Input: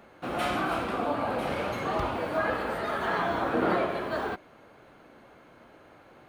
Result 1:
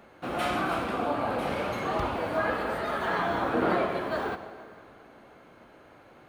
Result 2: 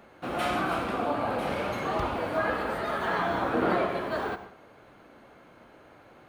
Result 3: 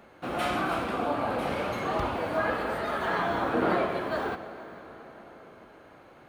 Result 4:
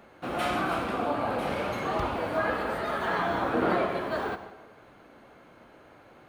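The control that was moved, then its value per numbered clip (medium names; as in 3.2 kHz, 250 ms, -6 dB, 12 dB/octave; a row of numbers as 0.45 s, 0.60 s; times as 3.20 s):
plate-style reverb, RT60: 2.4 s, 0.53 s, 5.2 s, 1.1 s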